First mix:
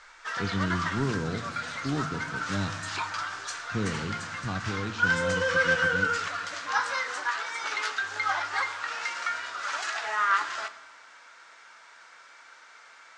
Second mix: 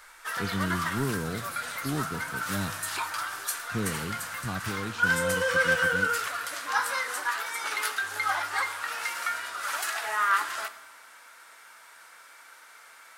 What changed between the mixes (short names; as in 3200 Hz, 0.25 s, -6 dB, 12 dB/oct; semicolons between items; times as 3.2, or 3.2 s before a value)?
speech: send -8.5 dB; master: remove steep low-pass 7000 Hz 36 dB/oct